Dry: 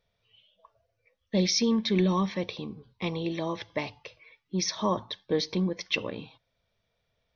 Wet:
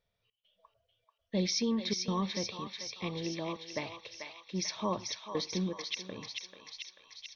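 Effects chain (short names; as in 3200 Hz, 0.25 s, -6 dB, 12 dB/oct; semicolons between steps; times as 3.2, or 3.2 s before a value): step gate "xx.xxxx.xxx" 101 bpm -24 dB; on a send: thinning echo 0.439 s, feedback 74%, high-pass 1200 Hz, level -3.5 dB; on the sum: gain -6 dB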